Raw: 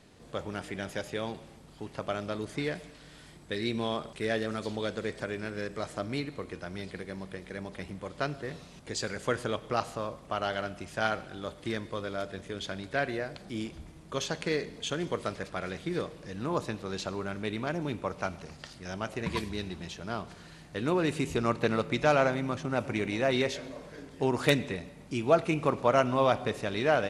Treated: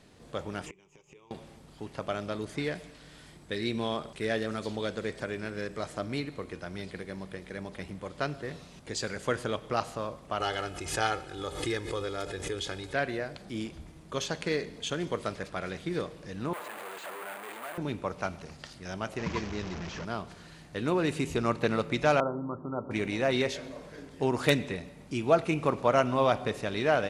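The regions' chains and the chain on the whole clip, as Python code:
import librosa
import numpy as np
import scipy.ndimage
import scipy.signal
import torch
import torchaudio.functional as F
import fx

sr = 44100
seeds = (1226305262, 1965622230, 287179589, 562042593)

y = fx.chain(x, sr, fx.ripple_eq(per_octave=0.73, db=17),
    fx.gate_flip(shuts_db=-29.0, range_db=-26), at=(0.66, 1.31))
y = fx.chain(y, sr, fx.peak_eq(hz=8200.0, db=5.0, octaves=1.1),
    fx.comb(ms=2.4, depth=0.64),
    fx.pre_swell(db_per_s=72.0), at=(10.4, 12.94))
y = fx.chain(y, sr, fx.clip_1bit(),
    fx.bandpass_edges(low_hz=660.0, high_hz=2200.0),
    fx.resample_bad(factor=4, down='filtered', up='hold'), at=(16.53, 17.78))
y = fx.chain(y, sr, fx.delta_mod(bps=32000, step_db=-31.5),
    fx.peak_eq(hz=3900.0, db=-8.0, octaves=0.8), at=(19.18, 20.05))
y = fx.chain(y, sr, fx.cheby_ripple(hz=1400.0, ripple_db=6),
    fx.hum_notches(base_hz=50, count=9), at=(22.2, 22.91))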